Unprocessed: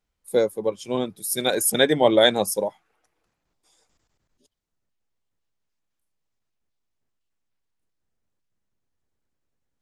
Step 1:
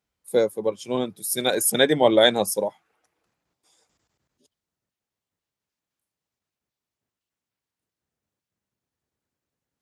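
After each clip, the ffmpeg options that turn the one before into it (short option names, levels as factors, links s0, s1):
-af "highpass=77"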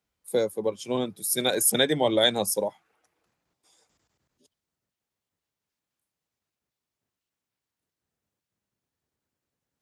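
-filter_complex "[0:a]acrossover=split=150|3000[s0][s1][s2];[s1]acompressor=threshold=0.0631:ratio=2[s3];[s0][s3][s2]amix=inputs=3:normalize=0"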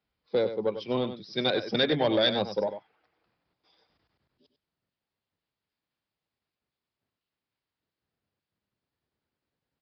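-af "aresample=11025,asoftclip=type=tanh:threshold=0.158,aresample=44100,aecho=1:1:97:0.299"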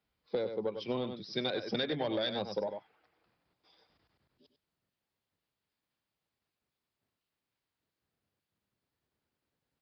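-af "acompressor=threshold=0.0282:ratio=5"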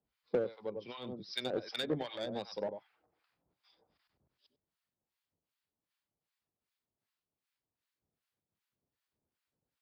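-filter_complex "[0:a]acrossover=split=950[s0][s1];[s0]aeval=exprs='val(0)*(1-1/2+1/2*cos(2*PI*2.6*n/s))':c=same[s2];[s1]aeval=exprs='val(0)*(1-1/2-1/2*cos(2*PI*2.6*n/s))':c=same[s3];[s2][s3]amix=inputs=2:normalize=0,asplit=2[s4][s5];[s5]acrusher=bits=4:mix=0:aa=0.5,volume=0.398[s6];[s4][s6]amix=inputs=2:normalize=0"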